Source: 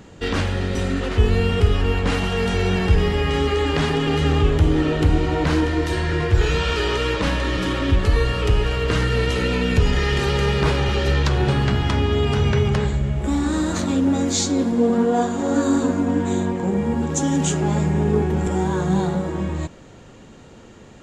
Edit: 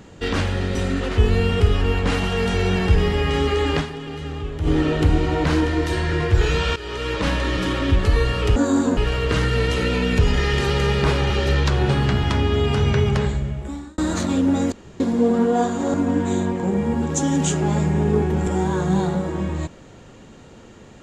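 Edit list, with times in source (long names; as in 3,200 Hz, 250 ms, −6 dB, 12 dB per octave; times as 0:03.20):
0:03.79–0:04.68: duck −11.5 dB, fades 0.33 s exponential
0:06.76–0:07.28: fade in, from −16 dB
0:12.82–0:13.57: fade out
0:14.31–0:14.59: fill with room tone
0:15.53–0:15.94: move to 0:08.56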